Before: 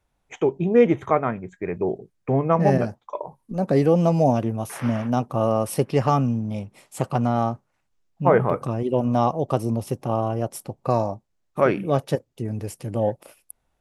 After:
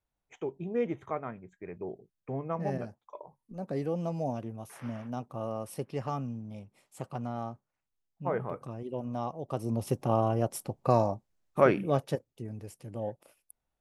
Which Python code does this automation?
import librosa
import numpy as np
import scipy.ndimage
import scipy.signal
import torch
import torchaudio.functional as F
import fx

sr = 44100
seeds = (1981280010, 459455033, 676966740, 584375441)

y = fx.gain(x, sr, db=fx.line((9.42, -14.5), (9.89, -3.0), (11.62, -3.0), (12.62, -13.0)))